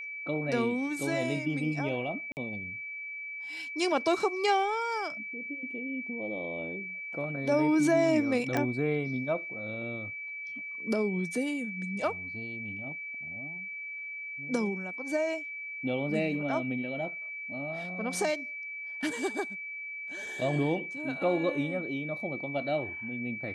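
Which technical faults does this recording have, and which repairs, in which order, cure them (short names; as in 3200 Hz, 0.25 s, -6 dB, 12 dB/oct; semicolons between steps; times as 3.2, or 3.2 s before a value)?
tone 2300 Hz -37 dBFS
2.32–2.37 gap 49 ms
8.57 pop -15 dBFS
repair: de-click; notch 2300 Hz, Q 30; interpolate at 2.32, 49 ms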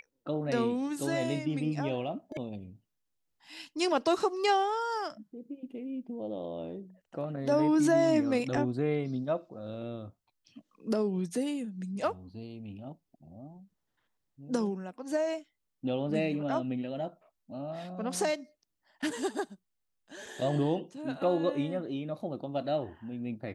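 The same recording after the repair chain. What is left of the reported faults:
none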